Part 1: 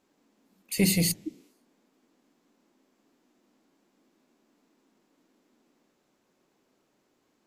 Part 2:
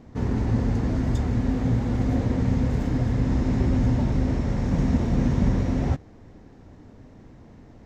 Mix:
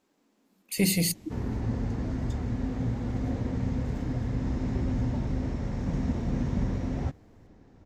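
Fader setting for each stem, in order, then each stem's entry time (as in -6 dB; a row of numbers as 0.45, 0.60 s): -1.0, -7.0 dB; 0.00, 1.15 s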